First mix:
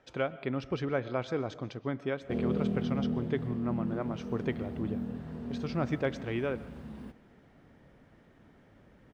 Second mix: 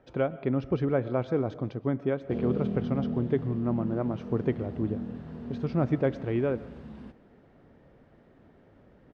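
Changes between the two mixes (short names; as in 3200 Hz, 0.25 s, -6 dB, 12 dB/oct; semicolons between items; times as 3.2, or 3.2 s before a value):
speech: add tilt shelf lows +7 dB, about 1200 Hz; master: add LPF 5700 Hz 12 dB/oct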